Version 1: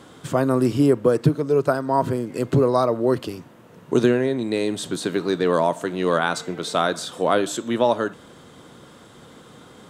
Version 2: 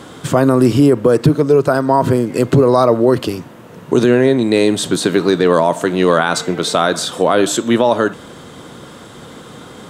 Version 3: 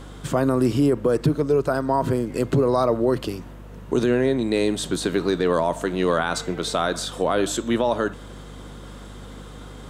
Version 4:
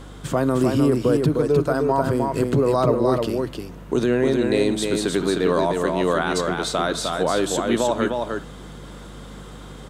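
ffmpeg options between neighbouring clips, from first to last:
-af "alimiter=level_in=11.5dB:limit=-1dB:release=50:level=0:latency=1,volume=-1dB"
-af "areverse,acompressor=mode=upward:threshold=-30dB:ratio=2.5,areverse,aeval=exprs='val(0)+0.0282*(sin(2*PI*50*n/s)+sin(2*PI*2*50*n/s)/2+sin(2*PI*3*50*n/s)/3+sin(2*PI*4*50*n/s)/4+sin(2*PI*5*50*n/s)/5)':c=same,volume=-8.5dB"
-af "aecho=1:1:306:0.631"

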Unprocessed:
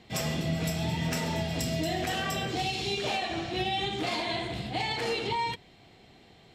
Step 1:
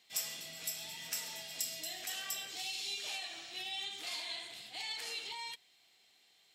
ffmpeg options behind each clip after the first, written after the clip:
-af "aderivative"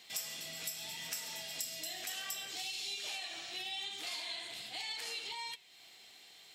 -af "acompressor=threshold=-58dB:ratio=2,flanger=delay=8.4:depth=8.2:regen=-90:speed=0.73:shape=sinusoidal,volume=15dB"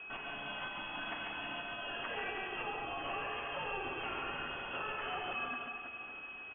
-af "aecho=1:1:140|322|558.6|866.2|1266:0.631|0.398|0.251|0.158|0.1,aeval=exprs='val(0)+0.00316*sin(2*PI*950*n/s)':c=same,lowpass=f=3k:t=q:w=0.5098,lowpass=f=3k:t=q:w=0.6013,lowpass=f=3k:t=q:w=0.9,lowpass=f=3k:t=q:w=2.563,afreqshift=-3500,volume=4.5dB"

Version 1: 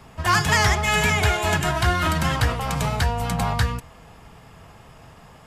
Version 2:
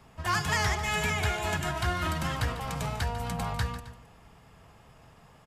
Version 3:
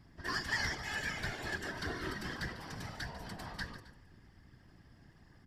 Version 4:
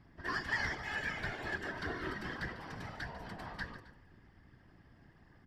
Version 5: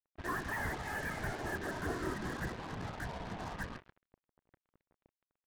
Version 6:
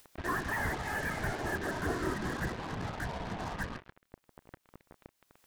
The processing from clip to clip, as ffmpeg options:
-af "aecho=1:1:147|265:0.211|0.119,volume=-9dB"
-af "superequalizer=6b=3.55:11b=3.16:13b=1.58:14b=3.16,aeval=exprs='val(0)+0.00562*(sin(2*PI*60*n/s)+sin(2*PI*2*60*n/s)/2+sin(2*PI*3*60*n/s)/3+sin(2*PI*4*60*n/s)/4+sin(2*PI*5*60*n/s)/5)':c=same,afftfilt=real='hypot(re,im)*cos(2*PI*random(0))':imag='hypot(re,im)*sin(2*PI*random(1))':win_size=512:overlap=0.75,volume=-7.5dB"
-af "bass=f=250:g=-3,treble=f=4k:g=-12,volume=1dB"
-af "aresample=8000,asoftclip=type=hard:threshold=-32dB,aresample=44100,lowpass=1.3k,acrusher=bits=7:mix=0:aa=0.5,volume=4dB"
-af "acompressor=mode=upward:threshold=-41dB:ratio=2.5,volume=4dB"

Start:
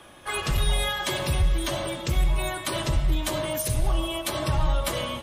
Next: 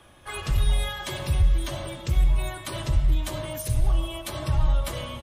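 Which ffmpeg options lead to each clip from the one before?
-af "firequalizer=gain_entry='entry(110,0);entry(160,-6);entry(310,-8)':delay=0.05:min_phase=1,volume=2.5dB"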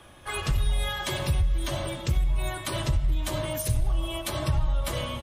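-af "acompressor=threshold=-23dB:ratio=6,volume=2.5dB"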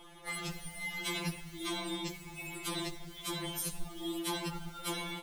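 -af "alimiter=limit=-22.5dB:level=0:latency=1:release=36,acrusher=bits=7:mode=log:mix=0:aa=0.000001,afftfilt=real='re*2.83*eq(mod(b,8),0)':imag='im*2.83*eq(mod(b,8),0)':win_size=2048:overlap=0.75"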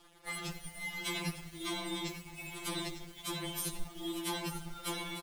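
-af "aecho=1:1:901:0.282,aeval=exprs='sgn(val(0))*max(abs(val(0))-0.00178,0)':c=same"

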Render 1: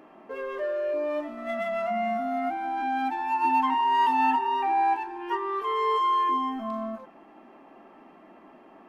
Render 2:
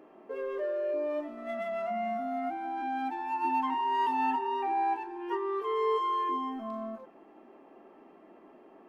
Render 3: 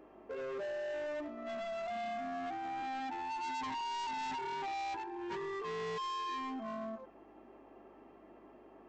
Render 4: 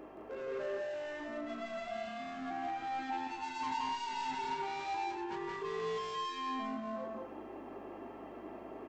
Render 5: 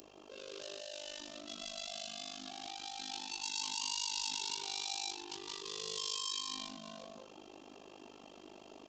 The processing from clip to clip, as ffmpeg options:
-af "equalizer=f=420:w=1.5:g=9,volume=-7.5dB"
-af "aresample=16000,asoftclip=type=hard:threshold=-35dB,aresample=44100,aeval=exprs='val(0)+0.000282*(sin(2*PI*50*n/s)+sin(2*PI*2*50*n/s)/2+sin(2*PI*3*50*n/s)/3+sin(2*PI*4*50*n/s)/4+sin(2*PI*5*50*n/s)/5)':c=same,volume=-2.5dB"
-af "areverse,acompressor=threshold=-49dB:ratio=6,areverse,aecho=1:1:32.07|172|209.9|277:0.282|0.794|0.562|0.282,volume=7dB"
-af "tremolo=f=50:d=0.974,aresample=16000,asoftclip=type=tanh:threshold=-39.5dB,aresample=44100,aexciter=amount=6.8:drive=9.8:freq=3k,volume=-3.5dB"

